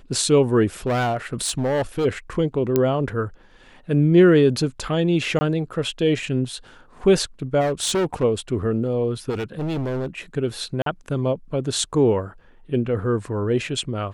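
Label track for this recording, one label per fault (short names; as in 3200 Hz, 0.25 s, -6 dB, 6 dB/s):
0.860000	2.060000	clipped -18 dBFS
2.760000	2.760000	pop -6 dBFS
5.390000	5.410000	gap 20 ms
7.600000	8.240000	clipped -18 dBFS
9.290000	10.180000	clipped -22.5 dBFS
10.820000	10.860000	gap 43 ms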